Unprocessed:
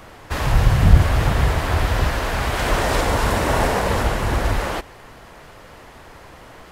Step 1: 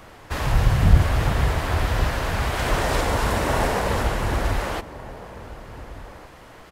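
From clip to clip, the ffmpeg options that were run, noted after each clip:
ffmpeg -i in.wav -filter_complex "[0:a]asplit=2[link_01][link_02];[link_02]adelay=1458,volume=-15dB,highshelf=frequency=4000:gain=-32.8[link_03];[link_01][link_03]amix=inputs=2:normalize=0,volume=-3dB" out.wav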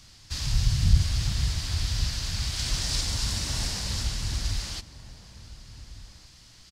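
ffmpeg -i in.wav -af "firequalizer=gain_entry='entry(110,0);entry(440,-19);entry(4700,14);entry(13000,-4)':delay=0.05:min_phase=1,volume=-5dB" out.wav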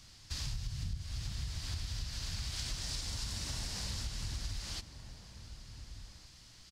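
ffmpeg -i in.wav -af "acompressor=threshold=-30dB:ratio=16,volume=-4.5dB" out.wav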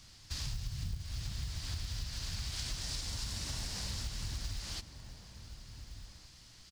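ffmpeg -i in.wav -af "acrusher=bits=6:mode=log:mix=0:aa=0.000001" out.wav

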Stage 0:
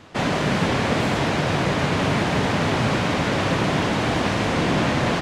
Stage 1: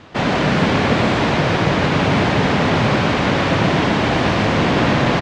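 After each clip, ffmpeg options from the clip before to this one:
ffmpeg -i in.wav -filter_complex "[0:a]lowpass=5400,asplit=2[link_01][link_02];[link_02]aecho=0:1:122:0.531[link_03];[link_01][link_03]amix=inputs=2:normalize=0,volume=4dB" out.wav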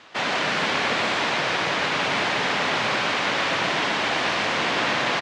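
ffmpeg -i in.wav -af "highpass=frequency=1400:poles=1" out.wav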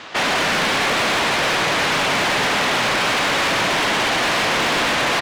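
ffmpeg -i in.wav -filter_complex "[0:a]asplit=2[link_01][link_02];[link_02]alimiter=limit=-18dB:level=0:latency=1,volume=1.5dB[link_03];[link_01][link_03]amix=inputs=2:normalize=0,asoftclip=type=tanh:threshold=-21.5dB,volume=5.5dB" out.wav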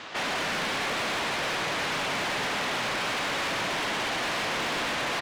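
ffmpeg -i in.wav -af "alimiter=limit=-22dB:level=0:latency=1,volume=-4.5dB" out.wav

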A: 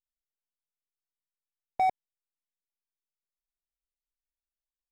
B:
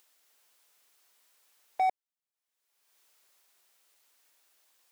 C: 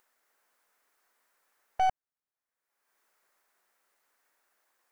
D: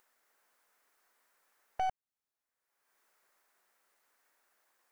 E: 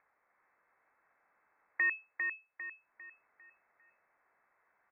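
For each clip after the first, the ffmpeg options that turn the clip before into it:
ffmpeg -i in.wav -af "highpass=430,acompressor=mode=upward:threshold=-45dB:ratio=2.5,volume=-1dB" out.wav
ffmpeg -i in.wav -af "aeval=exprs='0.1*(cos(1*acos(clip(val(0)/0.1,-1,1)))-cos(1*PI/2))+0.0224*(cos(6*acos(clip(val(0)/0.1,-1,1)))-cos(6*PI/2))':channel_layout=same,highshelf=frequency=2300:width_type=q:width=1.5:gain=-8.5" out.wav
ffmpeg -i in.wav -af "acompressor=threshold=-42dB:ratio=1.5" out.wav
ffmpeg -i in.wav -filter_complex "[0:a]asplit=2[link_01][link_02];[link_02]aecho=0:1:400|800|1200|1600|2000:0.562|0.214|0.0812|0.0309|0.0117[link_03];[link_01][link_03]amix=inputs=2:normalize=0,lowpass=frequency=2200:width_type=q:width=0.5098,lowpass=frequency=2200:width_type=q:width=0.6013,lowpass=frequency=2200:width_type=q:width=0.9,lowpass=frequency=2200:width_type=q:width=2.563,afreqshift=-2600,volume=2dB" out.wav

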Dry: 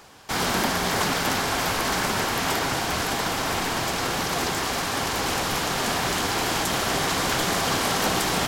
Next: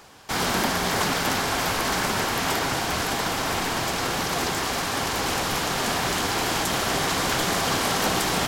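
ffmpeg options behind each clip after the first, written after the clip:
ffmpeg -i in.wav -af anull out.wav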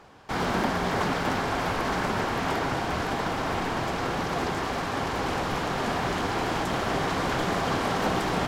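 ffmpeg -i in.wav -af "lowpass=frequency=1400:poles=1" out.wav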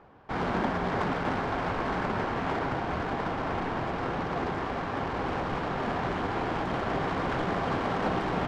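ffmpeg -i in.wav -af "adynamicsmooth=sensitivity=1.5:basefreq=2100,volume=-2dB" out.wav

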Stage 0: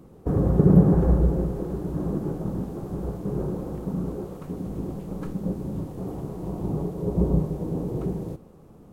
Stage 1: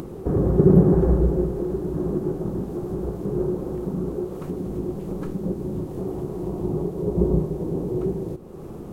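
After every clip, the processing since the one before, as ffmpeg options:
ffmpeg -i in.wav -af "equalizer=frequency=370:width_type=o:width=0.23:gain=10.5,acompressor=mode=upward:threshold=-24dB:ratio=2.5" out.wav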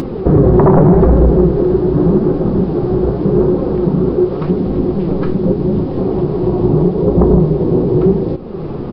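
ffmpeg -i in.wav -af "aresample=11025,aeval=exprs='0.75*sin(PI/2*2.82*val(0)/0.75)':channel_layout=same,aresample=44100,flanger=delay=3.7:depth=4.6:regen=63:speed=0.84:shape=sinusoidal,alimiter=level_in=6.5dB:limit=-1dB:release=50:level=0:latency=1,volume=-1dB" out.wav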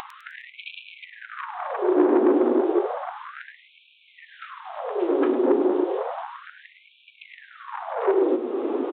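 ffmpeg -i in.wav -af "aresample=8000,asoftclip=type=tanh:threshold=-11.5dB,aresample=44100,aecho=1:1:103|206|309|412:0.251|0.108|0.0464|0.02,afftfilt=real='re*gte(b*sr/1024,220*pow(2300/220,0.5+0.5*sin(2*PI*0.32*pts/sr)))':imag='im*gte(b*sr/1024,220*pow(2300/220,0.5+0.5*sin(2*PI*0.32*pts/sr)))':win_size=1024:overlap=0.75" out.wav

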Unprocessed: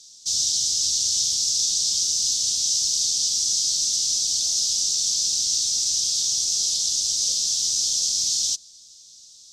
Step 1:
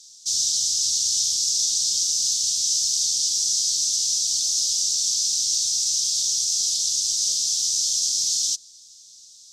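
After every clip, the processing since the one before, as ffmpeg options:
ffmpeg -i in.wav -af "highshelf=frequency=4600:gain=7.5,volume=-4.5dB" out.wav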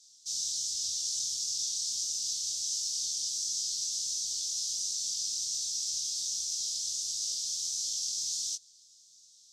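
ffmpeg -i in.wav -af "flanger=delay=19:depth=7.7:speed=1.4,volume=-8dB" out.wav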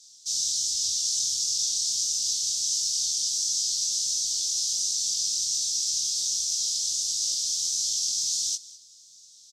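ffmpeg -i in.wav -af "aecho=1:1:203:0.106,volume=6.5dB" out.wav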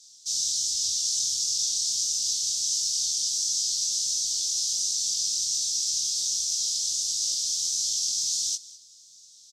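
ffmpeg -i in.wav -af anull out.wav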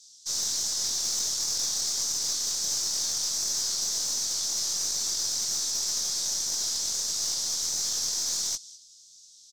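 ffmpeg -i in.wav -af "aeval=exprs='(tanh(10*val(0)+0.35)-tanh(0.35))/10':channel_layout=same" out.wav

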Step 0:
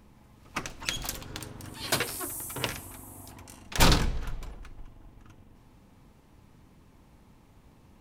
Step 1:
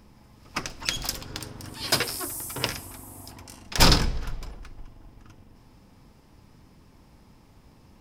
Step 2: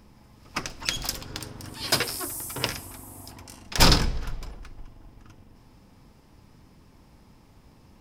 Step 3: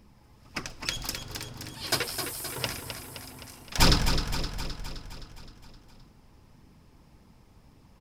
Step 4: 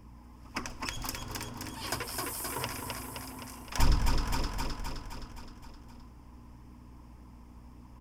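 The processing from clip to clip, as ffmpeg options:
ffmpeg -i in.wav -af "equalizer=frequency=5100:width=6.5:gain=10.5,volume=2.5dB" out.wav
ffmpeg -i in.wav -af anull out.wav
ffmpeg -i in.wav -af "flanger=delay=0.3:depth=2.4:regen=-44:speed=1.8:shape=triangular,aecho=1:1:260|520|780|1040|1300|1560|1820|2080:0.398|0.239|0.143|0.086|0.0516|0.031|0.0186|0.0111" out.wav
ffmpeg -i in.wav -filter_complex "[0:a]aeval=exprs='val(0)+0.00282*(sin(2*PI*60*n/s)+sin(2*PI*2*60*n/s)/2+sin(2*PI*3*60*n/s)/3+sin(2*PI*4*60*n/s)/4+sin(2*PI*5*60*n/s)/5)':channel_layout=same,acrossover=split=140[link_01][link_02];[link_02]acompressor=threshold=-31dB:ratio=10[link_03];[link_01][link_03]amix=inputs=2:normalize=0,equalizer=frequency=160:width_type=o:width=0.33:gain=-10,equalizer=frequency=250:width_type=o:width=0.33:gain=6,equalizer=frequency=1000:width_type=o:width=0.33:gain=9,equalizer=frequency=4000:width_type=o:width=0.33:gain=-11" out.wav

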